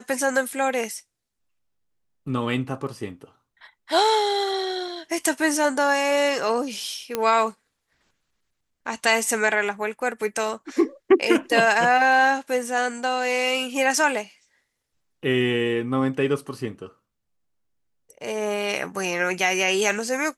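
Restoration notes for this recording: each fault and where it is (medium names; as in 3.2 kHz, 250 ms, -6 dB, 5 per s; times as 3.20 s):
7.15 s: pop -9 dBFS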